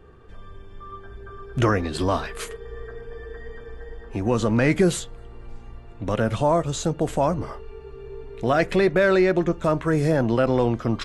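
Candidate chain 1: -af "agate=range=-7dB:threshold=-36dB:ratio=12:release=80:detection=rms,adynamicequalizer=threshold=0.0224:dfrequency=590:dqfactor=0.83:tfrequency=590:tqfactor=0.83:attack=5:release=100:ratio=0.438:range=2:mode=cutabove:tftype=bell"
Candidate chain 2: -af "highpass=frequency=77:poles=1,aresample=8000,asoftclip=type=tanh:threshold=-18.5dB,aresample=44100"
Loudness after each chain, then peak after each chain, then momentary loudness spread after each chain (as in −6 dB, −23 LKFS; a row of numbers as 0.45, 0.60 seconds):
−24.0, −26.5 LKFS; −8.0, −16.5 dBFS; 20, 18 LU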